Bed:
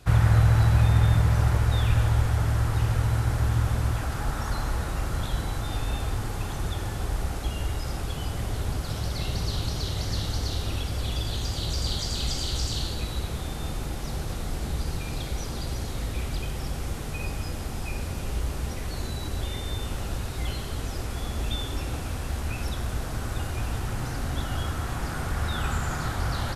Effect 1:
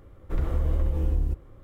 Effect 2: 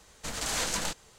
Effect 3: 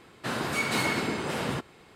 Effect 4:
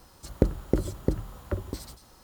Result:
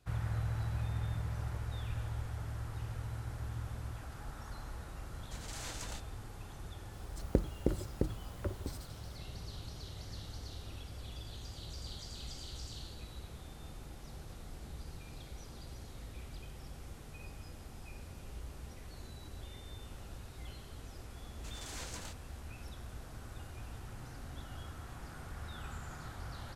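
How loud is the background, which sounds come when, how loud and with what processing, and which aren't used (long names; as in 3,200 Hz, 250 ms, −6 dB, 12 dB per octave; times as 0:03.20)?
bed −17 dB
0:05.07: mix in 2 −14.5 dB
0:06.93: mix in 4 −7.5 dB
0:21.20: mix in 2 −15.5 dB
not used: 1, 3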